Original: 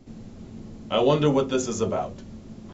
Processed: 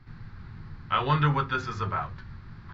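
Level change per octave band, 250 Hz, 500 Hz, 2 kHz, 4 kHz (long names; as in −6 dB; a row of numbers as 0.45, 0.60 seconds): −8.0, −14.0, +6.0, −4.5 decibels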